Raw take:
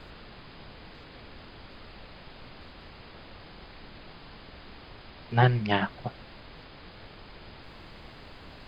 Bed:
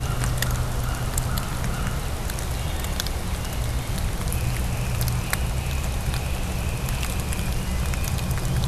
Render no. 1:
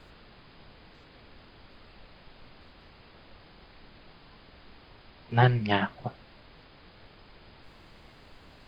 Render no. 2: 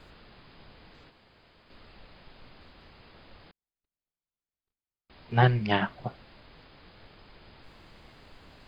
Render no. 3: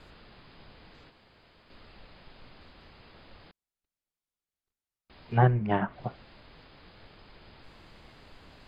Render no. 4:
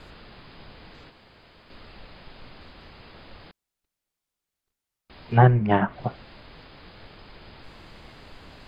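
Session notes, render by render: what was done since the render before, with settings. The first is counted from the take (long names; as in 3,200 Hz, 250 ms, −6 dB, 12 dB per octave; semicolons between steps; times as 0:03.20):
noise reduction from a noise print 6 dB
0:01.10–0:01.70: fill with room tone; 0:03.51–0:05.10: noise gate −45 dBFS, range −49 dB
treble cut that deepens with the level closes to 1,300 Hz, closed at −23 dBFS
level +6.5 dB; brickwall limiter −2 dBFS, peak gain reduction 1 dB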